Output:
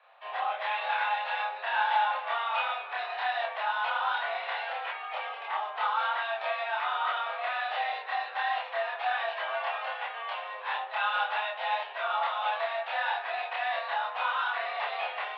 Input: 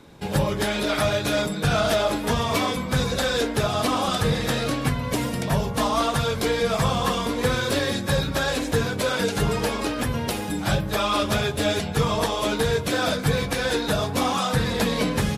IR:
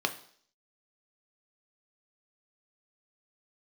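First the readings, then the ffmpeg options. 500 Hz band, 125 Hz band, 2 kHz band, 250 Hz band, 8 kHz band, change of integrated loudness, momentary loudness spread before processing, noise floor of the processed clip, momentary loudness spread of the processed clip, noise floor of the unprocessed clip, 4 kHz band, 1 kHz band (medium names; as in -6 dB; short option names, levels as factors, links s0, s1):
-13.0 dB, under -40 dB, -2.5 dB, under -40 dB, under -40 dB, -7.5 dB, 3 LU, -41 dBFS, 5 LU, -30 dBFS, -10.5 dB, -1.0 dB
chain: -filter_complex "[0:a]bandreject=f=1100:w=27,asplit=2[s0][s1];[1:a]atrim=start_sample=2205,adelay=27[s2];[s1][s2]afir=irnorm=-1:irlink=0,volume=0.501[s3];[s0][s3]amix=inputs=2:normalize=0,highpass=f=460:t=q:w=0.5412,highpass=f=460:t=q:w=1.307,lowpass=f=3000:t=q:w=0.5176,lowpass=f=3000:t=q:w=0.7071,lowpass=f=3000:t=q:w=1.932,afreqshift=220,volume=0.398"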